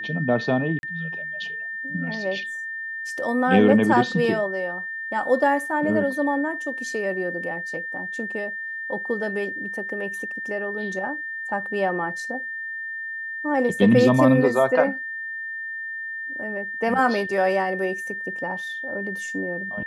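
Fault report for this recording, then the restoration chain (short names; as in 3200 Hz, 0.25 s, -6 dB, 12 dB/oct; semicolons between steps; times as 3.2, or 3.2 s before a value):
tone 1800 Hz -29 dBFS
0.79–0.83 gap 41 ms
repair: notch 1800 Hz, Q 30; interpolate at 0.79, 41 ms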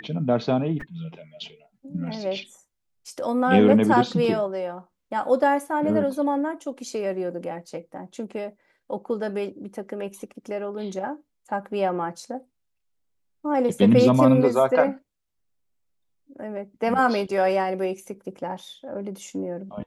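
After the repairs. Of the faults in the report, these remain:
none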